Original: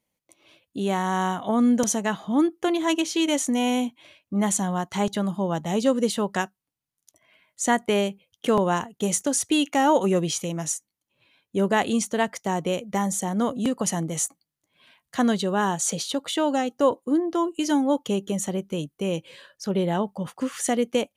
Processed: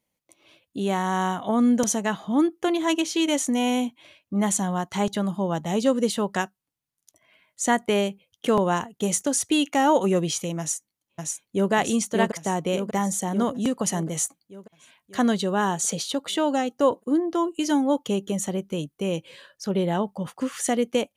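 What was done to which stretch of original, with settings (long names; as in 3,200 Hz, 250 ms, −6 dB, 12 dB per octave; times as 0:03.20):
0:10.59–0:11.72: delay throw 590 ms, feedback 60%, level −2.5 dB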